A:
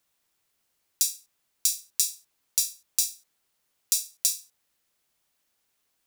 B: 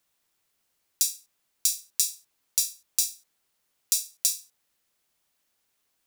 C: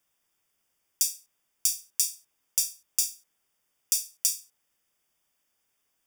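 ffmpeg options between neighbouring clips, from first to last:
-af "bandreject=f=60:t=h:w=6,bandreject=f=120:t=h:w=6"
-af "asuperstop=centerf=4100:order=20:qfactor=5.2,volume=-1dB"

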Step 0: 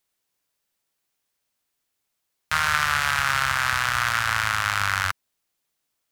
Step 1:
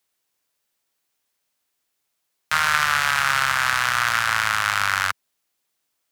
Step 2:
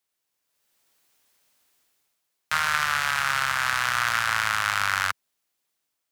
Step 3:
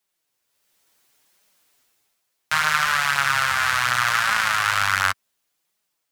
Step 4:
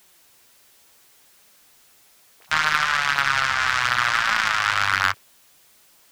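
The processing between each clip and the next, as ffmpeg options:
-filter_complex "[0:a]lowshelf=f=160:g=-6.5,acrossover=split=110|4000[a][b][c];[a]alimiter=level_in=23dB:limit=-24dB:level=0:latency=1,volume=-23dB[d];[d][b][c]amix=inputs=3:normalize=0,volume=2.5dB"
-af "dynaudnorm=f=440:g=3:m=15dB,volume=-6.5dB"
-af "flanger=delay=4.6:depth=6.1:regen=7:speed=0.69:shape=triangular,volume=7dB"
-af "aeval=exprs='val(0)+0.5*0.0447*sgn(val(0))':c=same,afwtdn=0.0282,aeval=exprs='0.668*(cos(1*acos(clip(val(0)/0.668,-1,1)))-cos(1*PI/2))+0.0596*(cos(2*acos(clip(val(0)/0.668,-1,1)))-cos(2*PI/2))+0.0473*(cos(7*acos(clip(val(0)/0.668,-1,1)))-cos(7*PI/2))':c=same"

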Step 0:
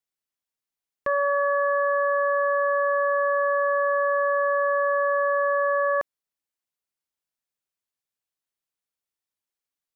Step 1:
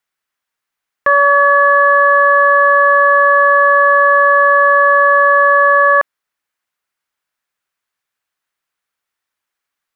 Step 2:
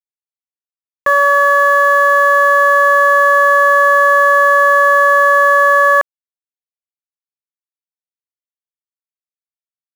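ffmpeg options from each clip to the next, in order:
-af "acontrast=46,equalizer=f=1.5k:t=o:w=1.9:g=11.5"
-af "dynaudnorm=f=950:g=5:m=7.5dB,aeval=exprs='val(0)*gte(abs(val(0)),0.0668)':c=same,volume=-1dB"

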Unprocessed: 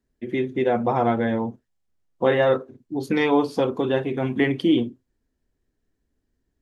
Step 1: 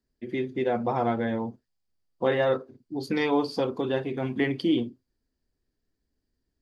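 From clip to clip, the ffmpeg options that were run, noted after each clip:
-af "equalizer=f=4.7k:w=5.2:g=12.5,volume=-5dB"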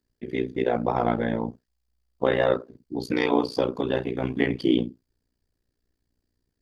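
-af "tremolo=f=60:d=0.947,volume=6dB"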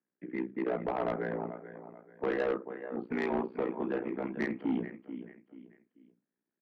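-af "highpass=f=280:t=q:w=0.5412,highpass=f=280:t=q:w=1.307,lowpass=f=2.3k:t=q:w=0.5176,lowpass=f=2.3k:t=q:w=0.7071,lowpass=f=2.3k:t=q:w=1.932,afreqshift=-59,aecho=1:1:436|872|1308:0.2|0.0658|0.0217,asoftclip=type=tanh:threshold=-19dB,volume=-5dB"

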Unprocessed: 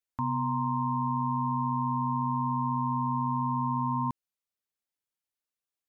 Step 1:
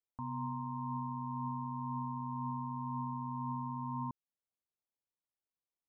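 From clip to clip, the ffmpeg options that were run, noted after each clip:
-af "lowpass=f=1.1k:w=0.5412,lowpass=f=1.1k:w=1.3066,alimiter=level_in=4.5dB:limit=-24dB:level=0:latency=1:release=216,volume=-4.5dB,volume=-3dB"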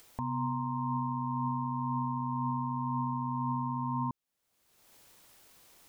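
-af "acompressor=mode=upward:threshold=-41dB:ratio=2.5,volume=6dB"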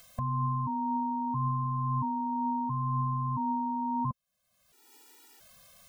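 -af "afftfilt=real='re*gt(sin(2*PI*0.74*pts/sr)*(1-2*mod(floor(b*sr/1024/250),2)),0)':imag='im*gt(sin(2*PI*0.74*pts/sr)*(1-2*mod(floor(b*sr/1024/250),2)),0)':win_size=1024:overlap=0.75,volume=6dB"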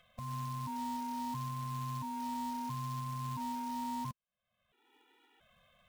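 -af "alimiter=level_in=3dB:limit=-24dB:level=0:latency=1:release=377,volume=-3dB,aresample=8000,aresample=44100,acrusher=bits=3:mode=log:mix=0:aa=0.000001,volume=-5dB"

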